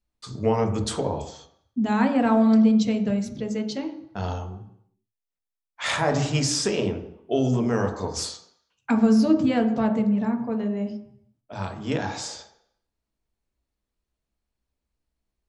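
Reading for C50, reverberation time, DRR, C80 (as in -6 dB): 10.0 dB, 0.70 s, 4.5 dB, 12.5 dB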